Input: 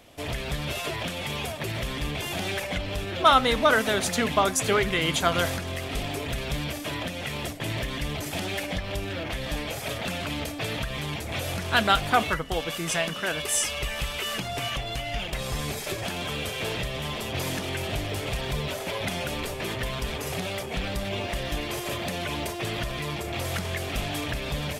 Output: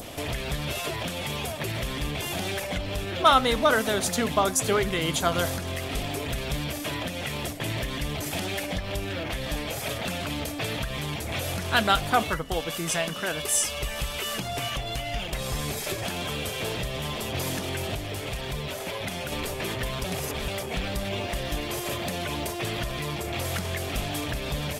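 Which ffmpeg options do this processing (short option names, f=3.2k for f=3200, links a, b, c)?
-filter_complex "[0:a]asplit=5[a][b][c][d][e];[a]atrim=end=17.952[f];[b]atrim=start=17.948:end=19.322,asetpts=PTS-STARTPTS,volume=-4dB[g];[c]atrim=start=19.318:end=20.042[h];[d]atrim=start=20.038:end=20.482,asetpts=PTS-STARTPTS,areverse[i];[e]atrim=start=20.478[j];[f][g]acrossfade=d=0.004:c1=hsin:c2=hsin[k];[k][h]acrossfade=d=0.004:c1=hsin:c2=hsin[l];[l][i]acrossfade=d=0.004:c1=hsin:c2=hsin[m];[m][j]acrossfade=d=0.004:c1=hsin:c2=hsin,adynamicequalizer=threshold=0.0141:dfrequency=2200:dqfactor=1:tfrequency=2200:tqfactor=1:attack=5:release=100:ratio=0.375:range=2.5:mode=cutabove:tftype=bell,acompressor=mode=upward:threshold=-28dB:ratio=2.5,highshelf=f=8.5k:g=4"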